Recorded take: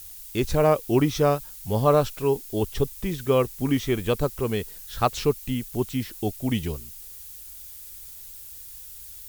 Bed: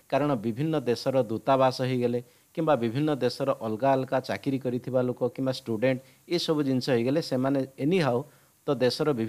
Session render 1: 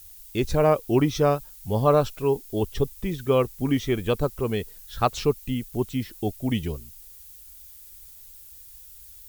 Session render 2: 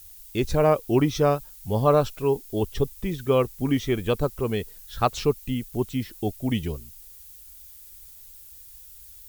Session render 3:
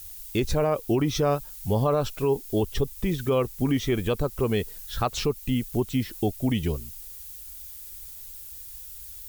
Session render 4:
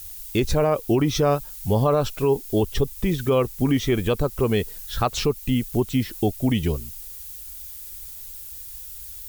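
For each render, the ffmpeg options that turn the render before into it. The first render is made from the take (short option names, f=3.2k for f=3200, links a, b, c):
-af "afftdn=nr=6:nf=-42"
-af anull
-filter_complex "[0:a]asplit=2[a][b];[b]acompressor=threshold=-29dB:ratio=6,volume=-2.5dB[c];[a][c]amix=inputs=2:normalize=0,alimiter=limit=-14dB:level=0:latency=1:release=62"
-af "volume=3.5dB"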